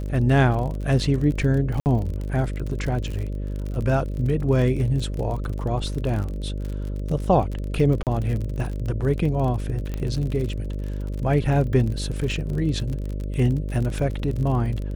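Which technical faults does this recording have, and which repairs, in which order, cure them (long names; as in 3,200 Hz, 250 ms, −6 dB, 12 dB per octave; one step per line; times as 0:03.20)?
mains buzz 50 Hz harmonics 12 −28 dBFS
surface crackle 45 per second −29 dBFS
0:01.80–0:01.86: drop-out 59 ms
0:08.03–0:08.07: drop-out 38 ms
0:09.94: click −17 dBFS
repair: click removal
hum removal 50 Hz, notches 12
repair the gap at 0:01.80, 59 ms
repair the gap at 0:08.03, 38 ms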